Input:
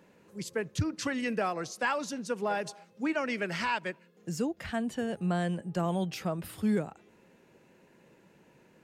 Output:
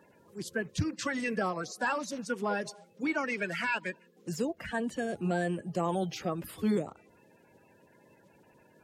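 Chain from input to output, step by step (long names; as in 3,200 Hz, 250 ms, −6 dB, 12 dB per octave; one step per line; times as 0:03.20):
spectral magnitudes quantised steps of 30 dB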